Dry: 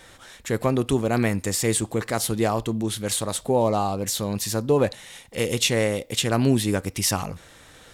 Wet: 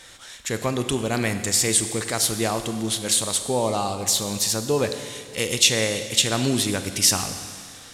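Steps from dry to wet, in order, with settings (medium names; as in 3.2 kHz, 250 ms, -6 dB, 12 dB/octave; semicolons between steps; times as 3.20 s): peaking EQ 5.8 kHz +10.5 dB 2.9 oct; Schroeder reverb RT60 2.1 s, combs from 32 ms, DRR 8.5 dB; trim -3.5 dB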